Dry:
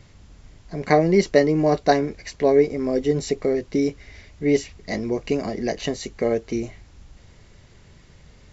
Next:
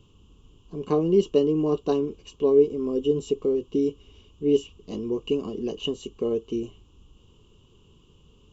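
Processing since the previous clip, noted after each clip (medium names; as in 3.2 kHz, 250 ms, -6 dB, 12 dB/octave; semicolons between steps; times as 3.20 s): FFT filter 130 Hz 0 dB, 440 Hz +7 dB, 650 Hz -12 dB, 1.1 kHz +5 dB, 2 kHz -28 dB, 2.9 kHz +12 dB, 4.4 kHz -12 dB, 8.5 kHz +2 dB; trim -7.5 dB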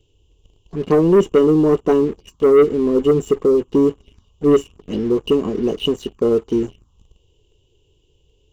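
touch-sensitive phaser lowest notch 180 Hz, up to 4.4 kHz, full sweep at -25 dBFS; waveshaping leveller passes 2; trim +3 dB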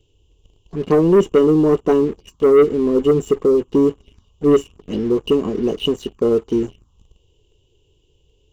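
no audible change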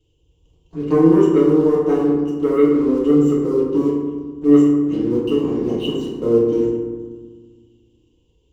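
reverberation RT60 1.5 s, pre-delay 3 ms, DRR -6 dB; trim -9.5 dB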